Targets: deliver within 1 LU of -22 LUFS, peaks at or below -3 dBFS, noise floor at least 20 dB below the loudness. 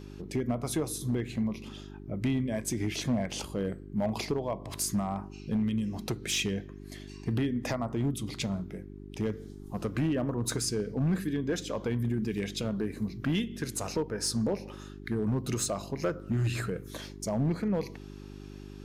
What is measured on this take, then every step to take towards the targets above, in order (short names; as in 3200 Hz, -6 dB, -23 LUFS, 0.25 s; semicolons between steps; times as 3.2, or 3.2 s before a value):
clipped 1.2%; flat tops at -22.5 dBFS; hum 50 Hz; harmonics up to 400 Hz; hum level -43 dBFS; loudness -32.0 LUFS; peak -22.5 dBFS; loudness target -22.0 LUFS
-> clip repair -22.5 dBFS; de-hum 50 Hz, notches 8; gain +10 dB